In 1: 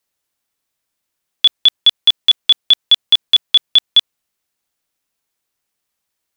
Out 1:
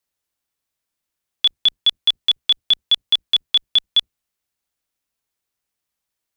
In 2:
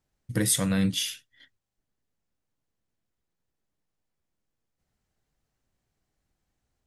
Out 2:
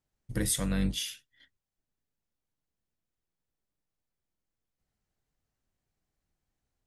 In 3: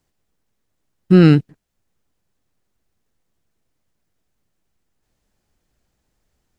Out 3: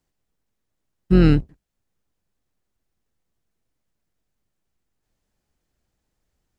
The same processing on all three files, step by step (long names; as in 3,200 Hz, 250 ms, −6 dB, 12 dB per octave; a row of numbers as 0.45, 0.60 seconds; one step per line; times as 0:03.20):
sub-octave generator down 2 octaves, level −3 dB
level −5.5 dB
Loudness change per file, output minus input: −5.5, −5.0, −5.0 LU